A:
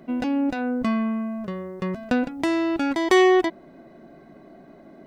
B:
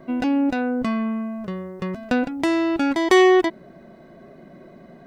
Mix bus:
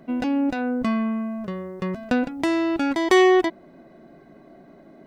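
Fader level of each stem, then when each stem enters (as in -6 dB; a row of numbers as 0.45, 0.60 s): -1.5, -14.5 dB; 0.00, 0.00 s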